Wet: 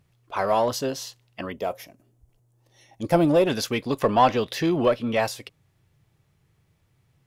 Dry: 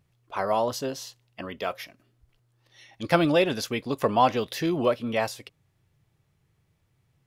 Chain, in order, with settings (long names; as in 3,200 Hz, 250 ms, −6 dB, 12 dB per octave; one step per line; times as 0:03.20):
0:01.52–0:03.47: flat-topped bell 2,400 Hz −10 dB 2.4 octaves
in parallel at −5.5 dB: asymmetric clip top −24.5 dBFS
0:03.99–0:05.19: on the sum: high-shelf EQ 8,300 Hz −6.5 dB